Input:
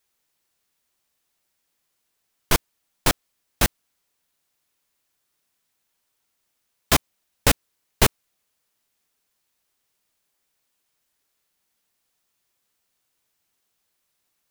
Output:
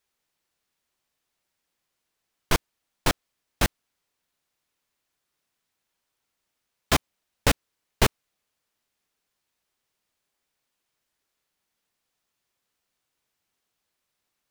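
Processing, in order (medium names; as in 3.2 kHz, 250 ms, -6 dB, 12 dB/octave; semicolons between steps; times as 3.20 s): treble shelf 7 kHz -7.5 dB; trim -2 dB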